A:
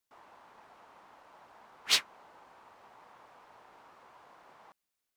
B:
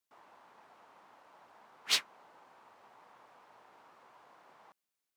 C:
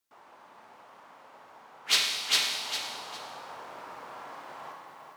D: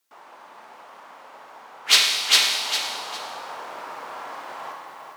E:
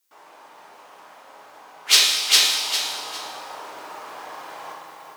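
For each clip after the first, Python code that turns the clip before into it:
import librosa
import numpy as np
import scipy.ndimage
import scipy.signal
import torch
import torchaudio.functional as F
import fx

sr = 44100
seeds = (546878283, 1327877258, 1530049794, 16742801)

y1 = scipy.signal.sosfilt(scipy.signal.butter(2, 110.0, 'highpass', fs=sr, output='sos'), x)
y1 = y1 * librosa.db_to_amplitude(-3.0)
y2 = fx.echo_feedback(y1, sr, ms=404, feedback_pct=24, wet_db=-6.0)
y2 = fx.rider(y2, sr, range_db=5, speed_s=0.5)
y2 = fx.rev_schroeder(y2, sr, rt60_s=1.5, comb_ms=28, drr_db=1.5)
y2 = y2 * librosa.db_to_amplitude(8.0)
y3 = fx.highpass(y2, sr, hz=340.0, slope=6)
y3 = y3 * librosa.db_to_amplitude(8.5)
y4 = fx.high_shelf(y3, sr, hz=3900.0, db=8.0)
y4 = fx.room_shoebox(y4, sr, seeds[0], volume_m3=42.0, walls='mixed', distance_m=0.61)
y4 = y4 * librosa.db_to_amplitude(-5.0)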